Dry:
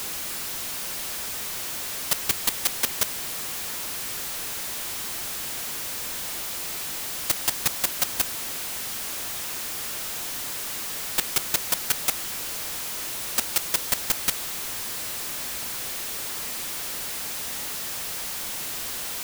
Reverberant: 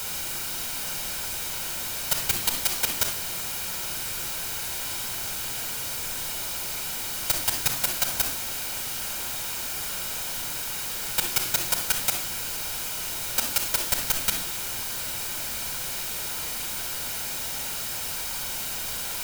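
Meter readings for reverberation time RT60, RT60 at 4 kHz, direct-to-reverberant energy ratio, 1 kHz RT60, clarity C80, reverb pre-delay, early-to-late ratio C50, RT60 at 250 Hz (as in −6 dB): 0.45 s, 0.40 s, 4.5 dB, 0.40 s, 12.5 dB, 35 ms, 7.0 dB, 0.65 s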